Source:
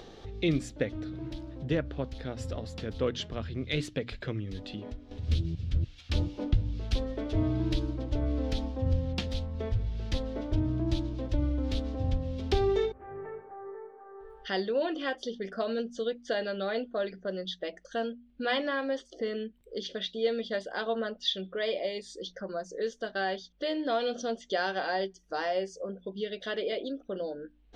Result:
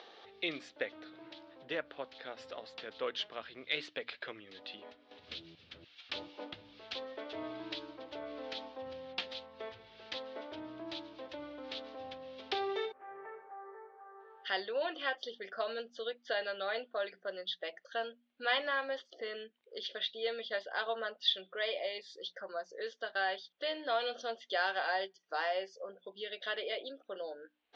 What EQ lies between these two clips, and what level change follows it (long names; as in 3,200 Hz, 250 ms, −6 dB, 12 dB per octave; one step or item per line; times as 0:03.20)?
high-pass filter 720 Hz 12 dB per octave
low-pass filter 4,500 Hz 24 dB per octave
0.0 dB